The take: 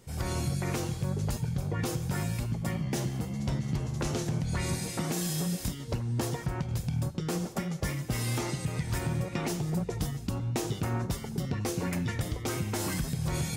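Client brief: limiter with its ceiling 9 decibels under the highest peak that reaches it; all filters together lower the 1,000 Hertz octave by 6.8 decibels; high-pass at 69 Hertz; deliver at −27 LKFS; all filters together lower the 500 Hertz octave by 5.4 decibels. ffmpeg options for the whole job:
ffmpeg -i in.wav -af "highpass=69,equalizer=frequency=500:width_type=o:gain=-6,equalizer=frequency=1000:width_type=o:gain=-7,volume=10.5dB,alimiter=limit=-19dB:level=0:latency=1" out.wav

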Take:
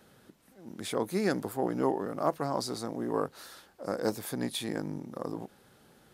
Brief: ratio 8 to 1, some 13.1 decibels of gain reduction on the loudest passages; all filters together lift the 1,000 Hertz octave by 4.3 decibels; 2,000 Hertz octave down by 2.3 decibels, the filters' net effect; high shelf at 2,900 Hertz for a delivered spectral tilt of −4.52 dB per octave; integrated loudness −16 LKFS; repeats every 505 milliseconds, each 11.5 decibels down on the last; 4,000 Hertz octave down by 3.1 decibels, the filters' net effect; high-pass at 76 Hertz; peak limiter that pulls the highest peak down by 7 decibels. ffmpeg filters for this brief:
ffmpeg -i in.wav -af "highpass=76,equalizer=frequency=1000:width_type=o:gain=6.5,equalizer=frequency=2000:width_type=o:gain=-6,highshelf=frequency=2900:gain=3,equalizer=frequency=4000:width_type=o:gain=-5,acompressor=threshold=-35dB:ratio=8,alimiter=level_in=4.5dB:limit=-24dB:level=0:latency=1,volume=-4.5dB,aecho=1:1:505|1010|1515:0.266|0.0718|0.0194,volume=26dB" out.wav

